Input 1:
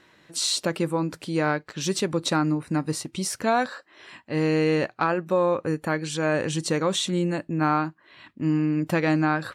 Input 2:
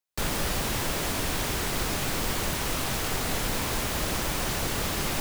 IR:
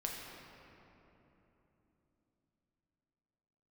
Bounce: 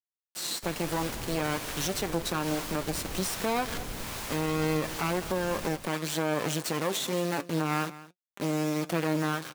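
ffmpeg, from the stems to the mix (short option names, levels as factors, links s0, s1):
-filter_complex "[0:a]acrusher=bits=3:dc=4:mix=0:aa=0.000001,highpass=180,flanger=delay=5:depth=2.7:regen=61:speed=0.36:shape=sinusoidal,volume=0.841,asplit=2[s0][s1];[s1]volume=0.0944[s2];[1:a]acrossover=split=620[s3][s4];[s3]aeval=exprs='val(0)*(1-0.5/2+0.5/2*cos(2*PI*1.2*n/s))':c=same[s5];[s4]aeval=exprs='val(0)*(1-0.5/2-0.5/2*cos(2*PI*1.2*n/s))':c=same[s6];[s5][s6]amix=inputs=2:normalize=0,adelay=450,volume=0.178,asplit=2[s7][s8];[s8]volume=0.422[s9];[s2][s9]amix=inputs=2:normalize=0,aecho=0:1:212:1[s10];[s0][s7][s10]amix=inputs=3:normalize=0,dynaudnorm=f=210:g=7:m=2.51,alimiter=limit=0.112:level=0:latency=1:release=96"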